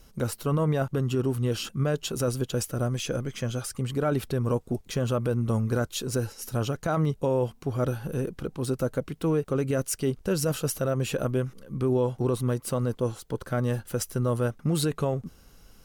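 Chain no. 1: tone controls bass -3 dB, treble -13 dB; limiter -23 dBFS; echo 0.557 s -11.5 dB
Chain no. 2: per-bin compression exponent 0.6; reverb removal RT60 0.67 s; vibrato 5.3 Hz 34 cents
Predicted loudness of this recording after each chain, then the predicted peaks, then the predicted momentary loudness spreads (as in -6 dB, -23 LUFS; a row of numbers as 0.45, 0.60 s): -33.0, -26.0 LUFS; -21.0, -10.5 dBFS; 4, 3 LU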